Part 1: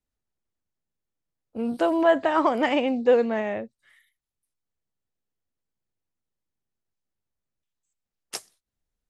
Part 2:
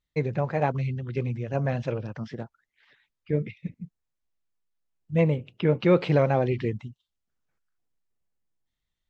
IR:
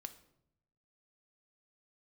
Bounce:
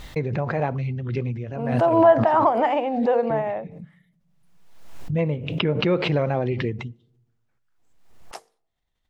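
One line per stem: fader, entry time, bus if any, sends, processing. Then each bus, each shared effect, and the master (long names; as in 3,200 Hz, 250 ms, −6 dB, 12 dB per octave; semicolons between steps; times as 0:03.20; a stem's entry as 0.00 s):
−8.5 dB, 0.00 s, send −12.5 dB, parametric band 810 Hz +14 dB 1.4 octaves; mains-hum notches 50/100/150/200/250/300/350/400/450/500 Hz
+2.5 dB, 0.00 s, send −7 dB, downward compressor 1.5 to 1, threshold −32 dBFS, peak gain reduction 6.5 dB; automatic ducking −10 dB, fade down 0.20 s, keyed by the first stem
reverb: on, RT60 0.75 s, pre-delay 3 ms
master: high-shelf EQ 5,600 Hz −8 dB; background raised ahead of every attack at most 48 dB per second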